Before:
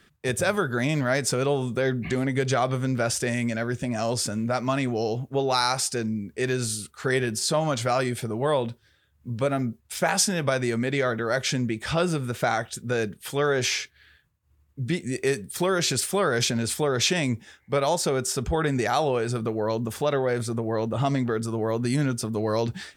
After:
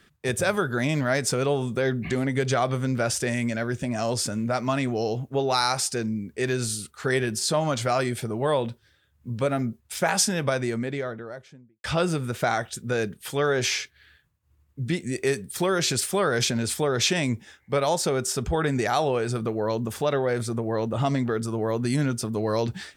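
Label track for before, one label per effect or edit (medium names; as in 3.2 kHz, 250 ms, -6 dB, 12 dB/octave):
10.310000	11.840000	studio fade out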